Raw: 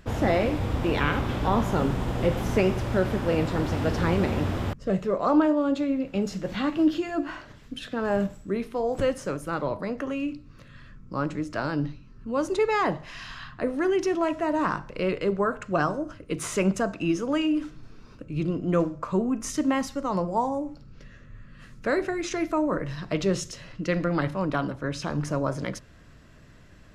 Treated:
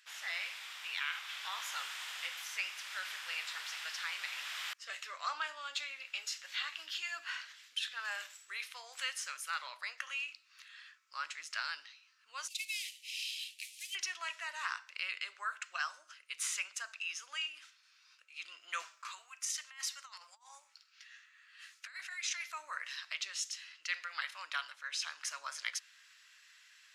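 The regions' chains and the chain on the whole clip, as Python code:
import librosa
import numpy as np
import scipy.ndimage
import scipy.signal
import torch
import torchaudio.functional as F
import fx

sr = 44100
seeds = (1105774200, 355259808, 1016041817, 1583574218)

y = fx.chain(x, sr, fx.cvsd(bps=64000),
    fx.cheby1_highpass(hz=2300.0, order=6), at=(12.48, 13.95))
y = fx.chain(y, sr, fx.highpass(hz=800.0, slope=12),
    fx.over_compress(threshold_db=-35.0, ratio=-0.5), at=(18.82, 22.51))
y = scipy.signal.sosfilt(scipy.signal.bessel(4, 2600.0, 'highpass', norm='mag', fs=sr, output='sos'), y)
y = fx.high_shelf(y, sr, hz=8800.0, db=-6.5)
y = fx.rider(y, sr, range_db=5, speed_s=0.5)
y = y * librosa.db_to_amplitude(3.5)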